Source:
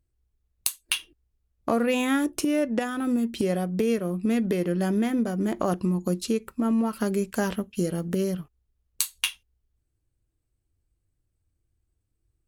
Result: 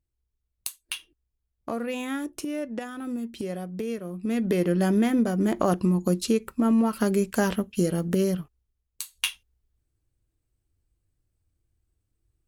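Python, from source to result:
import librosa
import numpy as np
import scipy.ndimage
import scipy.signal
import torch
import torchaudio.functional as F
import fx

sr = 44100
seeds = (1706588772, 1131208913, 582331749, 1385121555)

y = fx.gain(x, sr, db=fx.line((4.12, -7.0), (4.58, 2.5), (8.34, 2.5), (9.04, -10.0), (9.27, 0.5)))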